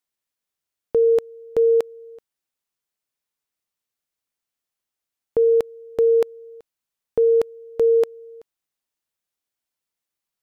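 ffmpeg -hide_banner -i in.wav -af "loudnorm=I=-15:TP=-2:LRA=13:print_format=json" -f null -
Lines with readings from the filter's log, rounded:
"input_i" : "-20.2",
"input_tp" : "-11.3",
"input_lra" : "5.8",
"input_thresh" : "-31.7",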